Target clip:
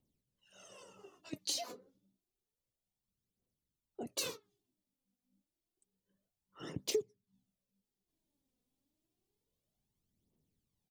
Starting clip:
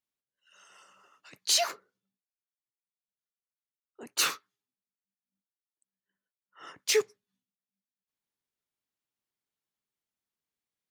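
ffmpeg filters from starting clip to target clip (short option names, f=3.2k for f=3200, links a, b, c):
-af "firequalizer=gain_entry='entry(150,0);entry(1400,-27);entry(3300,-17)':delay=0.05:min_phase=1,acompressor=threshold=-53dB:ratio=12,aphaser=in_gain=1:out_gain=1:delay=4.1:decay=0.63:speed=0.29:type=triangular,volume=16dB"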